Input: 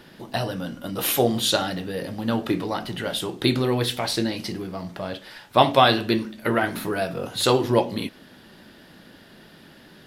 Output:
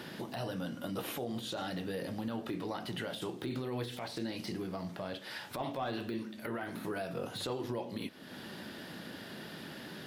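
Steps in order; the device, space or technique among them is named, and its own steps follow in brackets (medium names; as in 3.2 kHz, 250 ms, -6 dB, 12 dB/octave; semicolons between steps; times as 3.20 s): podcast mastering chain (high-pass 94 Hz 12 dB/octave; de-esser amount 80%; compression 2.5:1, threshold -44 dBFS, peak gain reduction 19 dB; peak limiter -31 dBFS, peak gain reduction 9.5 dB; trim +4 dB; MP3 112 kbps 48 kHz)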